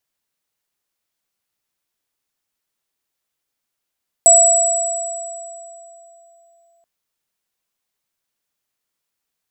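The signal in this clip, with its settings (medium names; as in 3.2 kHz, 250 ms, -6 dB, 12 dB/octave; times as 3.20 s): sine partials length 2.58 s, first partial 680 Hz, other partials 7.81 kHz, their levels 6 dB, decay 3.44 s, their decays 2.39 s, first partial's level -11.5 dB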